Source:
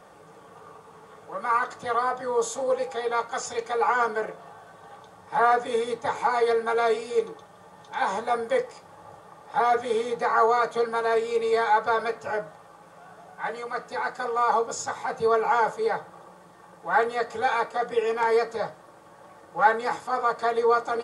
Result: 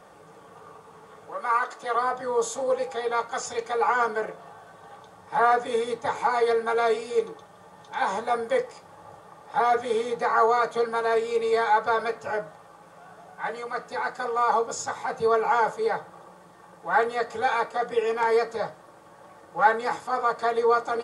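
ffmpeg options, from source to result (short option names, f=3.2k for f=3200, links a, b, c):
-filter_complex "[0:a]asettb=1/sr,asplit=3[a][b][c];[a]atrim=end=1.324[d];[b]atrim=start=1.32:end=1.96,asetpts=PTS-STARTPTS,afade=t=in:d=0.004:c=qsin,afade=t=out:st=0.636:d=0.004:c=qsin,highpass=310[e];[c]atrim=start=1.956[f];[d][e]acrossfade=d=0.004:c1=hsin:c2=qsin[g];[g][f]acrossfade=d=0.004:c1=qsin:c2=hsin"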